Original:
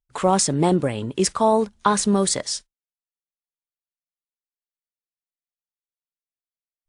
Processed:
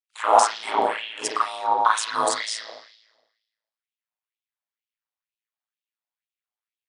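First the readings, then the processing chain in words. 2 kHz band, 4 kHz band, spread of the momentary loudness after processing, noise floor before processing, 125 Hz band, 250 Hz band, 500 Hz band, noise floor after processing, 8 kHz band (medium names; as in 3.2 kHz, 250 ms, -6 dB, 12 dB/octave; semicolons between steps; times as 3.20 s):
+5.5 dB, -1.0 dB, 11 LU, under -85 dBFS, under -25 dB, -18.5 dB, -5.5 dB, under -85 dBFS, -5.5 dB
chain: spring tank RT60 1.1 s, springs 35/41 ms, chirp 20 ms, DRR -7.5 dB; ring modulator 55 Hz; LFO high-pass sine 2.1 Hz 750–2900 Hz; trim -3 dB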